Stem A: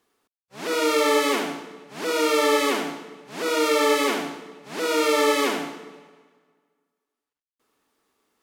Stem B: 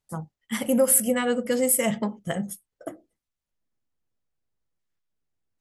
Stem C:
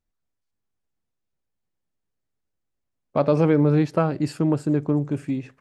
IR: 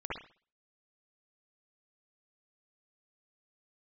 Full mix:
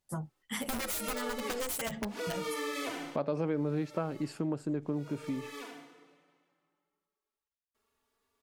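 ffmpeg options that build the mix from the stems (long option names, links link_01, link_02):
-filter_complex "[0:a]asplit=2[link_01][link_02];[link_02]adelay=3.4,afreqshift=0.31[link_03];[link_01][link_03]amix=inputs=2:normalize=1,adelay=150,volume=-5dB[link_04];[1:a]aeval=exprs='(mod(6.68*val(0)+1,2)-1)/6.68':channel_layout=same,asplit=2[link_05][link_06];[link_06]adelay=8.3,afreqshift=-1.7[link_07];[link_05][link_07]amix=inputs=2:normalize=1,volume=2.5dB[link_08];[2:a]highpass=150,volume=-3.5dB,asplit=2[link_09][link_10];[link_10]apad=whole_len=378436[link_11];[link_04][link_11]sidechaincompress=threshold=-42dB:ratio=4:attack=8.5:release=1320[link_12];[link_12][link_08]amix=inputs=2:normalize=0,asubboost=boost=4.5:cutoff=88,acompressor=threshold=-27dB:ratio=6,volume=0dB[link_13];[link_09][link_13]amix=inputs=2:normalize=0,acompressor=threshold=-36dB:ratio=2"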